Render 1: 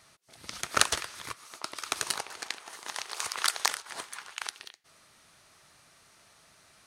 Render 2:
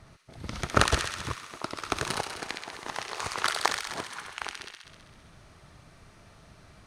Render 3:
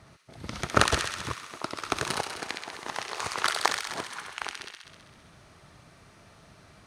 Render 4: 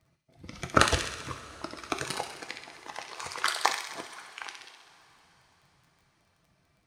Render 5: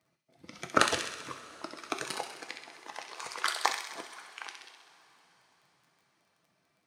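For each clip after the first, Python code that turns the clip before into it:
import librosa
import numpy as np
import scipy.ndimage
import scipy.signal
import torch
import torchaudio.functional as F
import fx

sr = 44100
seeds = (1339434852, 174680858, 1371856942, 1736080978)

y1 = fx.tilt_eq(x, sr, slope=-4.0)
y1 = fx.echo_wet_highpass(y1, sr, ms=65, feedback_pct=73, hz=1800.0, wet_db=-3.5)
y1 = y1 * 10.0 ** (4.5 / 20.0)
y2 = fx.highpass(y1, sr, hz=97.0, slope=6)
y2 = y2 * 10.0 ** (1.0 / 20.0)
y3 = fx.bin_expand(y2, sr, power=1.5)
y3 = fx.dmg_crackle(y3, sr, seeds[0], per_s=12.0, level_db=-53.0)
y3 = fx.rev_double_slope(y3, sr, seeds[1], early_s=0.49, late_s=4.9, knee_db=-18, drr_db=6.5)
y3 = y3 * 10.0 ** (1.0 / 20.0)
y4 = scipy.signal.sosfilt(scipy.signal.butter(2, 210.0, 'highpass', fs=sr, output='sos'), y3)
y4 = y4 * 10.0 ** (-2.5 / 20.0)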